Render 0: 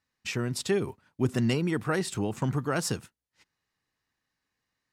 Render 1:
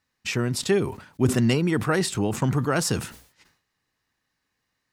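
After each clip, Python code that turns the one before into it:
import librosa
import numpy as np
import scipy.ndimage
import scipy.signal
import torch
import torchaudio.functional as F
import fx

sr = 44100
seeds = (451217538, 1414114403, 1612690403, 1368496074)

y = fx.sustainer(x, sr, db_per_s=110.0)
y = F.gain(torch.from_numpy(y), 5.0).numpy()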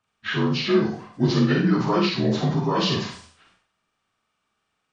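y = fx.partial_stretch(x, sr, pct=81)
y = fx.rev_schroeder(y, sr, rt60_s=0.41, comb_ms=33, drr_db=1.5)
y = F.gain(torch.from_numpy(y), 1.5).numpy()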